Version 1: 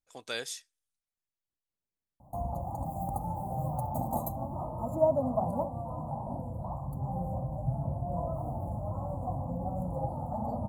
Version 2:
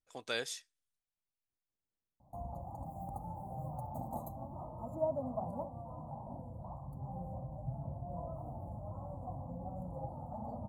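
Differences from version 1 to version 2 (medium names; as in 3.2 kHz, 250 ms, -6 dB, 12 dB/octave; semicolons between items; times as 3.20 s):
background -9.0 dB; master: add treble shelf 6.1 kHz -6.5 dB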